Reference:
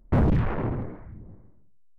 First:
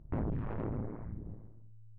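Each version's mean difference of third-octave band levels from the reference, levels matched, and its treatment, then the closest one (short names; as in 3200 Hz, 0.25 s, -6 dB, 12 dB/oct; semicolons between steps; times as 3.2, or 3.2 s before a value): 5.0 dB: LPF 1100 Hz 6 dB/oct; compressor 5:1, threshold -34 dBFS, peak gain reduction 13.5 dB; AM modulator 110 Hz, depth 80%; soft clip -30.5 dBFS, distortion -19 dB; gain +4.5 dB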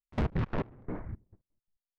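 7.0 dB: gate -41 dBFS, range -30 dB; in parallel at -1 dB: compressor, threshold -32 dBFS, peak gain reduction 12 dB; on the sum: soft clip -26 dBFS, distortion -9 dB; step gate "..x.x.x...xxx" 170 bpm -24 dB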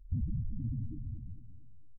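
12.5 dB: Chebyshev band-stop 330–770 Hz, order 5; loudest bins only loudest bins 4; on a send: feedback echo 0.226 s, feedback 48%, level -15 dB; on the sum: compressor, threshold -34 dBFS, peak gain reduction 13.5 dB; gain +2.5 dB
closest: first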